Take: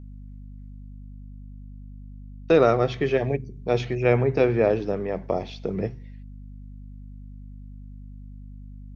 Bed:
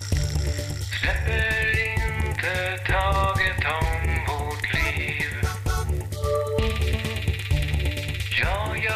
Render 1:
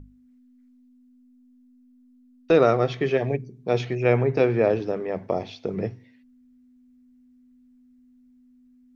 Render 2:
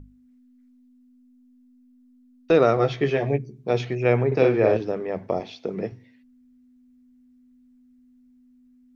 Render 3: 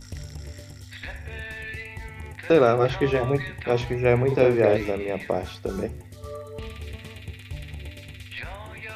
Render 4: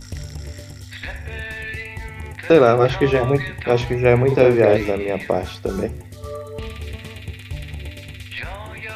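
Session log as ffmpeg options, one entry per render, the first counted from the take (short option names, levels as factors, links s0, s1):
-af "bandreject=f=50:t=h:w=6,bandreject=f=100:t=h:w=6,bandreject=f=150:t=h:w=6,bandreject=f=200:t=h:w=6"
-filter_complex "[0:a]asettb=1/sr,asplit=3[s0][s1][s2];[s0]atrim=end=2.764[s3];[s1]atrim=start=2.76:end=3.71,asetpts=PTS-STARTPTS,afade=t=in:d=0.004:c=qsin,afade=t=out:st=0.946:d=0.004:c=qsin,asplit=2[s4][s5];[s5]adelay=14,volume=0.562[s6];[s4][s6]amix=inputs=2:normalize=0,atrim=end_sample=41895[s7];[s2]atrim=start=3.706[s8];[s3][s7]acrossfade=d=0.004:c1=hsin:c2=qsin[s9];[s9][s8]acrossfade=d=0.004:c1=qsin:c2=hsin,asettb=1/sr,asplit=3[s10][s11][s12];[s10]atrim=end=4.274[s13];[s11]atrim=start=4.27:end=4.77,asetpts=PTS-STARTPTS,afade=t=in:d=0.004:c=qsin,afade=t=out:st=0.496:d=0.004:c=qsin,asplit=2[s14][s15];[s15]adelay=46,volume=0.708[s16];[s14][s16]amix=inputs=2:normalize=0,atrim=end_sample=22050[s17];[s12]atrim=start=4.766[s18];[s13][s17]acrossfade=d=0.004:c1=hsin:c2=qsin[s19];[s19][s18]acrossfade=d=0.004:c1=qsin:c2=hsin,asettb=1/sr,asplit=3[s20][s21][s22];[s20]atrim=end=5.404[s23];[s21]atrim=start=5.4:end=5.92,asetpts=PTS-STARTPTS,afade=t=in:d=0.004:c=qsin,afade=t=out:st=0.516:d=0.004:c=qsin,highpass=170[s24];[s22]atrim=start=5.916[s25];[s23][s24]acrossfade=d=0.004:c1=hsin:c2=qsin[s26];[s26][s25]acrossfade=d=0.004:c1=qsin:c2=hsin"
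-filter_complex "[1:a]volume=0.224[s0];[0:a][s0]amix=inputs=2:normalize=0"
-af "volume=1.88,alimiter=limit=0.794:level=0:latency=1"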